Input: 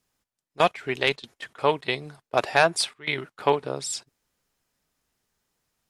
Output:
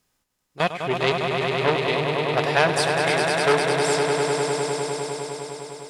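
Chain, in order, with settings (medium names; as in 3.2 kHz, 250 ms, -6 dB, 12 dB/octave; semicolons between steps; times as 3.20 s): harmonic-percussive split harmonic +9 dB; echo with a slow build-up 101 ms, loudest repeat 5, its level -7 dB; transformer saturation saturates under 1.6 kHz; trim -1 dB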